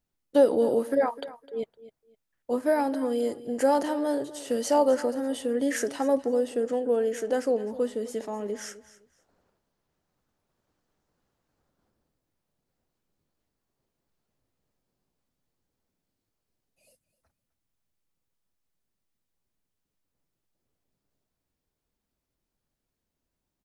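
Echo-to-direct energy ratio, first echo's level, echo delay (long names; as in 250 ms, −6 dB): −17.0 dB, −17.0 dB, 256 ms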